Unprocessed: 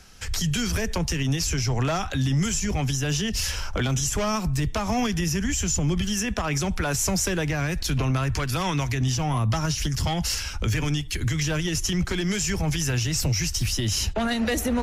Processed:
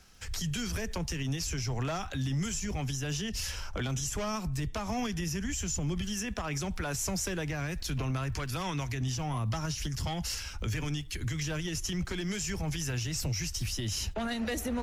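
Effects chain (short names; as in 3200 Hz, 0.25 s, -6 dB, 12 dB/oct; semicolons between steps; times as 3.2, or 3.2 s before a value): crackle 340/s -46 dBFS, from 2.87 s 42/s, from 5.46 s 240/s; gain -8.5 dB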